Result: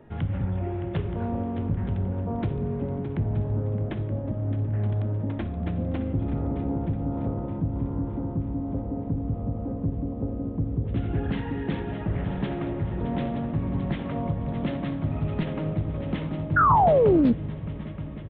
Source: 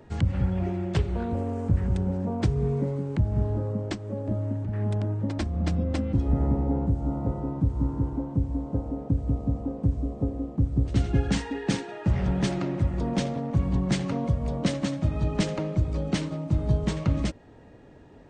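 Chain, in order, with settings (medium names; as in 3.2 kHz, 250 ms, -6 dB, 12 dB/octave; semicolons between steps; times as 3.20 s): multi-head delay 308 ms, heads second and third, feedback 53%, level -12 dB; in parallel at 0 dB: peak limiter -22 dBFS, peak gain reduction 10.5 dB; on the sum: distance through air 230 m; resampled via 8 kHz; on a send at -8.5 dB: reverberation RT60 1.1 s, pre-delay 9 ms; on the sum: painted sound fall, 16.56–17.33 s, 220–1500 Hz -12 dBFS; peaking EQ 69 Hz -9.5 dB 0.41 oct; loudspeaker Doppler distortion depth 0.28 ms; trim -6 dB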